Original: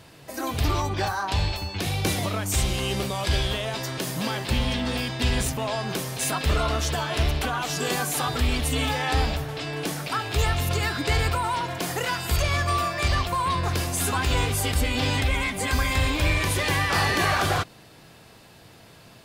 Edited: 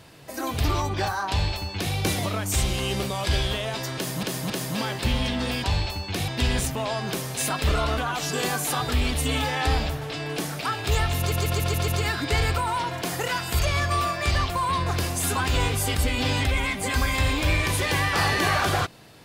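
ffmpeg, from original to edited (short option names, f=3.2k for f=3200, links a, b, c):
-filter_complex "[0:a]asplit=11[a][b][c][d][e][f][g][h][i][j][k];[a]atrim=end=4.232[l];[b]atrim=start=3.958:end=4.232[m];[c]atrim=start=3.958:end=5.102[n];[d]atrim=start=1.298:end=1.942[o];[e]atrim=start=5.098:end=6.802[p];[f]atrim=start=7.448:end=10.792[q];[g]atrim=start=10.648:end=10.792[r];[h]atrim=start=10.648:end=10.792[s];[i]atrim=start=10.648:end=10.792[t];[j]atrim=start=10.648:end=10.792[u];[k]atrim=start=10.648[v];[l][m]acrossfade=d=0.004:c1=hsin:c2=hsin[w];[w][n]acrossfade=d=0.004:c1=hsin:c2=hsin[x];[x][o]acrossfade=d=0.004:c1=hsin:c2=hsin[y];[y][p]acrossfade=d=0.004:c1=hsin:c2=hsin[z];[z][q]acrossfade=d=0.004:c1=hsin:c2=hsin[aa];[aa][r]acrossfade=d=0.004:c1=hsin:c2=hsin[ab];[ab][s]acrossfade=d=0.004:c1=hsin:c2=hsin[ac];[ac][t]acrossfade=d=0.004:c1=hsin:c2=hsin[ad];[ad][u]acrossfade=d=0.004:c1=hsin:c2=hsin[ae];[ae][v]acrossfade=d=0.004:c1=hsin:c2=hsin"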